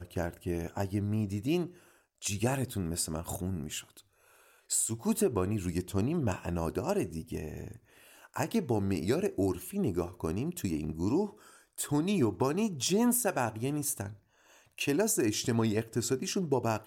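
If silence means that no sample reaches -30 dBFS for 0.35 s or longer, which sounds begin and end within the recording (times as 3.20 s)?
2.25–3.79 s
4.71–7.60 s
8.36–11.26 s
11.79–14.06 s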